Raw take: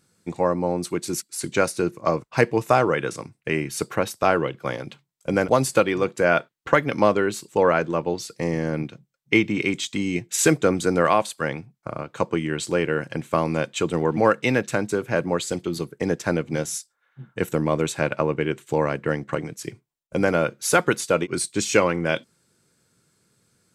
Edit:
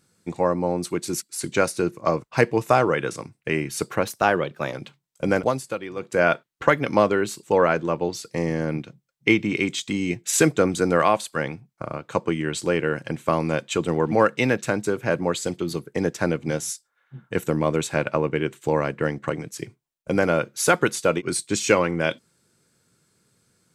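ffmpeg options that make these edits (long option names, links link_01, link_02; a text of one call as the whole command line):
ffmpeg -i in.wav -filter_complex "[0:a]asplit=5[link_01][link_02][link_03][link_04][link_05];[link_01]atrim=end=4.074[link_06];[link_02]atrim=start=4.07:end=4.78,asetpts=PTS-STARTPTS,asetrate=47628,aresample=44100[link_07];[link_03]atrim=start=4.776:end=5.67,asetpts=PTS-STARTPTS,afade=type=out:start_time=0.654:duration=0.24:silence=0.281838[link_08];[link_04]atrim=start=5.67:end=6.01,asetpts=PTS-STARTPTS,volume=-11dB[link_09];[link_05]atrim=start=6.01,asetpts=PTS-STARTPTS,afade=type=in:duration=0.24:silence=0.281838[link_10];[link_06][link_07]acrossfade=duration=0.004:curve1=hsin:curve2=hsin[link_11];[link_08][link_09][link_10]concat=n=3:v=0:a=1[link_12];[link_11][link_12]acrossfade=duration=0.004:curve1=hsin:curve2=hsin" out.wav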